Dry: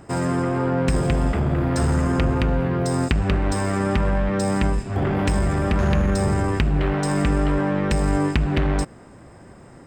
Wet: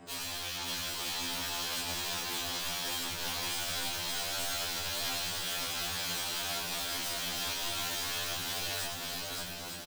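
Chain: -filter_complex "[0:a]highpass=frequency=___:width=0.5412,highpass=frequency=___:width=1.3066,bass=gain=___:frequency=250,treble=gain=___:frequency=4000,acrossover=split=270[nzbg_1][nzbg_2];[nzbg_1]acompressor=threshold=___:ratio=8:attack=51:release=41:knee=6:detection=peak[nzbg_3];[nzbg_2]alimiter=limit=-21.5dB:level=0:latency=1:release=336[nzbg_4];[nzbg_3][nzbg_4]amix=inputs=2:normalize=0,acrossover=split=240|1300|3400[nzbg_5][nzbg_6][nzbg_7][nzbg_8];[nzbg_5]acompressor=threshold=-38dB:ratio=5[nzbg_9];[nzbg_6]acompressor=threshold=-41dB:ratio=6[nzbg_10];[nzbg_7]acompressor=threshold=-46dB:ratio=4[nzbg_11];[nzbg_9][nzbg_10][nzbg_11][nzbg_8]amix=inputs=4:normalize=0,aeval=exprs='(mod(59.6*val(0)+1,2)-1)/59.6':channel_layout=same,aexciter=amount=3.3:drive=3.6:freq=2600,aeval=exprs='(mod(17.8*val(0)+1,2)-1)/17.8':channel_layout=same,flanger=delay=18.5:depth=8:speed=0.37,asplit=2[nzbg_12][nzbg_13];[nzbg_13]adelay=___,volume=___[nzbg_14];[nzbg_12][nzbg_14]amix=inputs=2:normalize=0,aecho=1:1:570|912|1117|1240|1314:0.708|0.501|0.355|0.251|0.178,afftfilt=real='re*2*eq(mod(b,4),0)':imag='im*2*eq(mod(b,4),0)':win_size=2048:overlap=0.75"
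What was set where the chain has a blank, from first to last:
94, 94, -1, -14, -39dB, 22, -5.5dB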